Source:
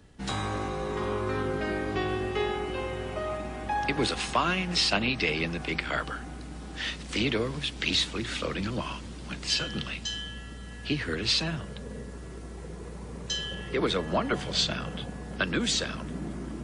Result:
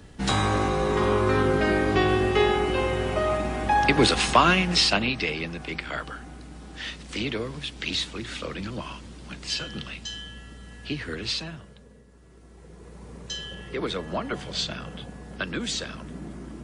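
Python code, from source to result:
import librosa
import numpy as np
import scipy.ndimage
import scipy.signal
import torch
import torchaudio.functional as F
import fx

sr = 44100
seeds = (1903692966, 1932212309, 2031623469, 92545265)

y = fx.gain(x, sr, db=fx.line((4.49, 8.0), (5.42, -2.0), (11.23, -2.0), (12.04, -14.5), (13.08, -2.5)))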